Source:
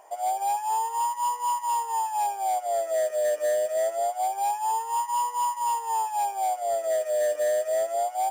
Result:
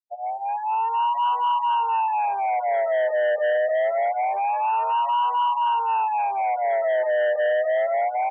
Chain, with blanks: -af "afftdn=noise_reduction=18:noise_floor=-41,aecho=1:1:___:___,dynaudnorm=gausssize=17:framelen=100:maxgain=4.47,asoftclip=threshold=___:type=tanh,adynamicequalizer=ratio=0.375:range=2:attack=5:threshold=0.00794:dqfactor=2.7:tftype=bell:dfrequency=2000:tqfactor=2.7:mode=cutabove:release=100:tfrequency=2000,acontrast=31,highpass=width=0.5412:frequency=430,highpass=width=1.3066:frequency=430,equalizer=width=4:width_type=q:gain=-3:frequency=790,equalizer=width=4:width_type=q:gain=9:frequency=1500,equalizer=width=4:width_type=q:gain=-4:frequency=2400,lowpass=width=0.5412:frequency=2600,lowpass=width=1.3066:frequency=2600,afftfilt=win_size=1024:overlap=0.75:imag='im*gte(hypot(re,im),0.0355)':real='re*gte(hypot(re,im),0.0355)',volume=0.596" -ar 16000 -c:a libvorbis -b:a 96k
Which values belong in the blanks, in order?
1029, 0.119, 0.106